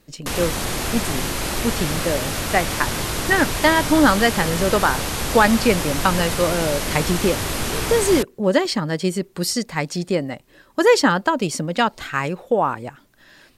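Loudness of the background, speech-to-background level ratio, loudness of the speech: −24.0 LKFS, 3.5 dB, −20.5 LKFS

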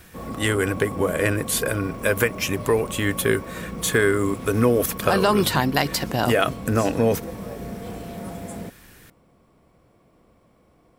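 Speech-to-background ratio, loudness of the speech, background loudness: 12.5 dB, −22.0 LKFS, −34.5 LKFS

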